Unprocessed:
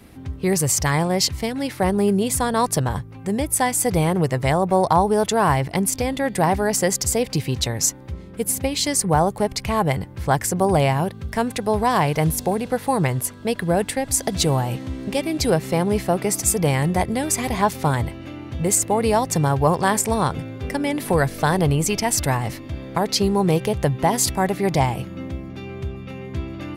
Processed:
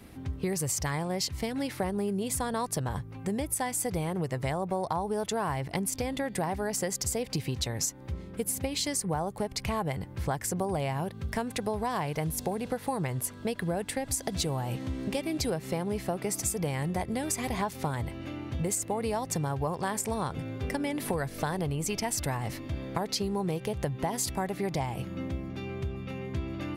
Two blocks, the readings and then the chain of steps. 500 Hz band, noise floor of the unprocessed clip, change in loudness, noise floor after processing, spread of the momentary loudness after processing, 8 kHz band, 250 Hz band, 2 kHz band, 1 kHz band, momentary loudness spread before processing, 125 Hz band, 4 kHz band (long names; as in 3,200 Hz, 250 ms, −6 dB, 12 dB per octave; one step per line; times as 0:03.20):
−11.0 dB, −38 dBFS, −11.0 dB, −45 dBFS, 5 LU, −10.0 dB, −10.0 dB, −11.0 dB, −12.0 dB, 10 LU, −10.5 dB, −9.5 dB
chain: downward compressor, threshold −24 dBFS, peak gain reduction 12 dB
level −3.5 dB